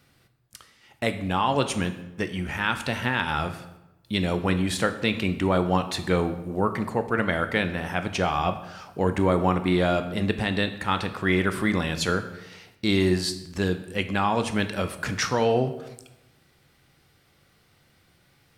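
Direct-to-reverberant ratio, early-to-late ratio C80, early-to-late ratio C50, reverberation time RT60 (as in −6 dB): 8.5 dB, 14.0 dB, 11.5 dB, 0.95 s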